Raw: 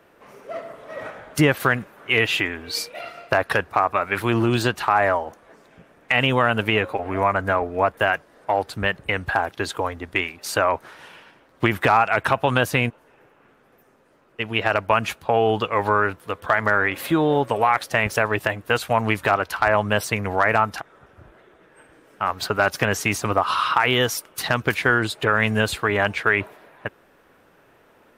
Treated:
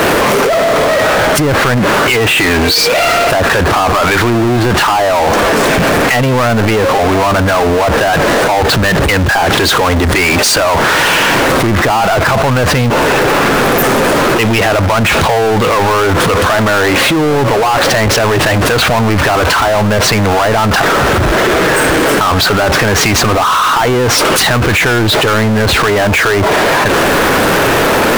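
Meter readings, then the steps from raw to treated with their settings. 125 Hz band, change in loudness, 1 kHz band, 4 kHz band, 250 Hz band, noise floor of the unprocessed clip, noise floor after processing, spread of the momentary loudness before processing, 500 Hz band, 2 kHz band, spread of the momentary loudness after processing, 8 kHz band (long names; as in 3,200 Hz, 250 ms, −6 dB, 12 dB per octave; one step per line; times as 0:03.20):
+14.0 dB, +11.5 dB, +11.5 dB, +15.5 dB, +13.5 dB, −57 dBFS, −11 dBFS, 9 LU, +13.0 dB, +11.0 dB, 2 LU, +18.5 dB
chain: treble cut that deepens with the level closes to 1,200 Hz, closed at −15 dBFS
power curve on the samples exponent 0.35
envelope flattener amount 100%
level −2 dB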